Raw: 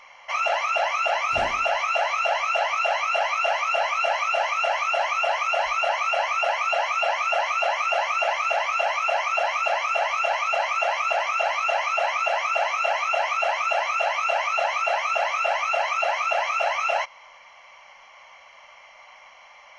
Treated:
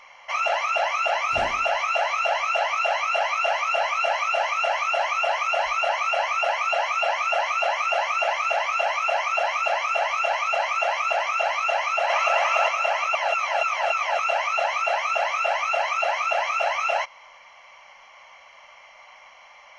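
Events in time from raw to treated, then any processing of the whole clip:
0:11.71–0:12.30: delay throw 380 ms, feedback 25%, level −0.5 dB
0:13.15–0:14.19: reverse

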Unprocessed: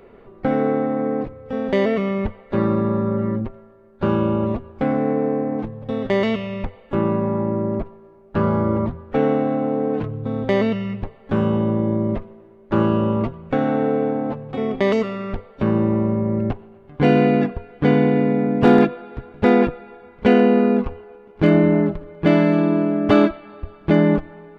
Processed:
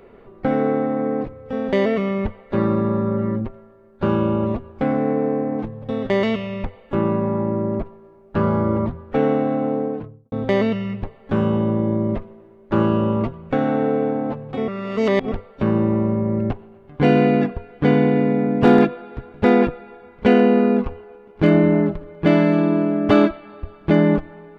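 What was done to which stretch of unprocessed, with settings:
0:09.66–0:10.32: fade out and dull
0:14.68–0:15.32: reverse

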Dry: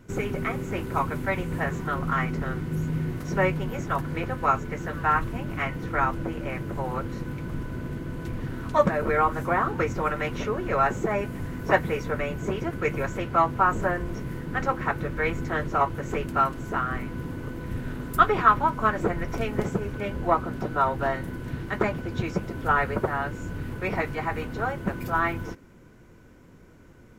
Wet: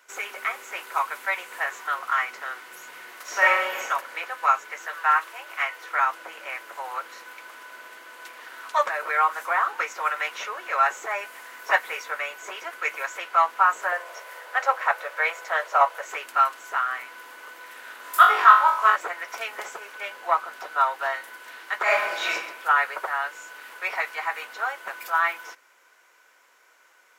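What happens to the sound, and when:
0:03.22–0:03.83: thrown reverb, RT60 0.97 s, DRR −4.5 dB
0:04.87–0:05.99: Butterworth high-pass 300 Hz 72 dB per octave
0:13.92–0:16.05: high-pass with resonance 570 Hz, resonance Q 3
0:18.02–0:18.96: flutter between parallel walls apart 3.6 metres, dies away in 0.47 s
0:21.83–0:22.32: thrown reverb, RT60 0.89 s, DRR −9 dB
whole clip: Bessel high-pass filter 1,100 Hz, order 4; level +5.5 dB

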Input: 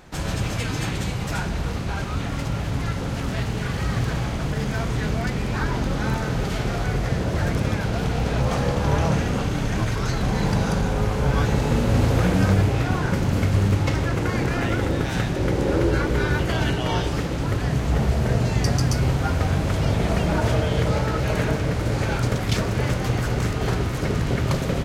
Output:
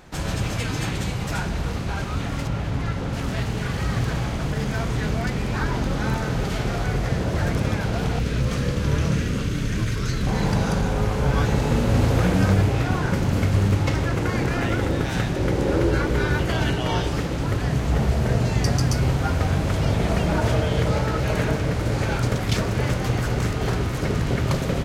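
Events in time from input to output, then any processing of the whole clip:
0:02.47–0:03.13: high-shelf EQ 5,500 Hz −8.5 dB
0:08.19–0:10.27: parametric band 790 Hz −15 dB 0.79 octaves
0:23.53–0:24.01: hard clipping −16.5 dBFS

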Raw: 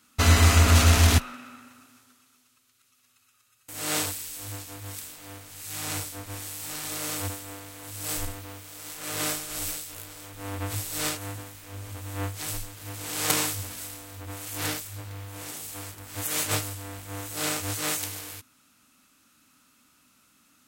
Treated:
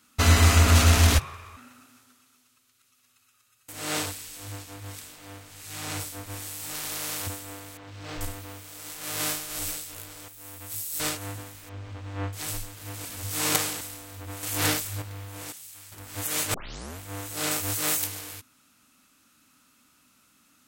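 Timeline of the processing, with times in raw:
0:01.14–0:01.57: frequency shifter −160 Hz
0:03.72–0:06.00: high-shelf EQ 8,100 Hz −7.5 dB
0:06.74–0:07.27: every bin compressed towards the loudest bin 2 to 1
0:07.77–0:08.21: high-frequency loss of the air 200 metres
0:08.96–0:09.57: spectral envelope flattened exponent 0.6
0:10.28–0:11.00: first-order pre-emphasis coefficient 0.8
0:11.69–0:12.33: high-frequency loss of the air 160 metres
0:13.05–0:13.81: reverse
0:14.43–0:15.02: clip gain +5.5 dB
0:15.52–0:15.92: guitar amp tone stack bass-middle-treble 5-5-5
0:16.54: tape start 0.45 s
0:17.51–0:18.07: high-shelf EQ 11,000 Hz +9 dB

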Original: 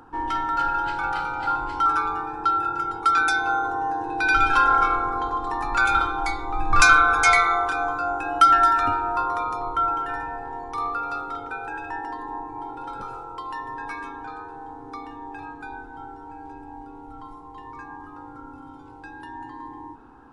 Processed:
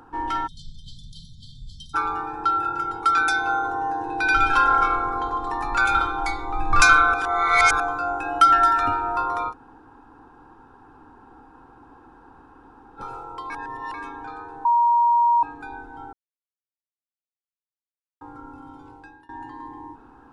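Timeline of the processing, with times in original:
0:00.47–0:01.95: time-frequency box erased 240–3,100 Hz
0:07.14–0:07.80: reverse
0:09.51–0:12.99: fill with room tone, crossfade 0.06 s
0:13.50–0:13.94: reverse
0:14.65–0:15.43: beep over 946 Hz −14.5 dBFS
0:16.13–0:18.21: silence
0:18.88–0:19.29: fade out, to −22.5 dB

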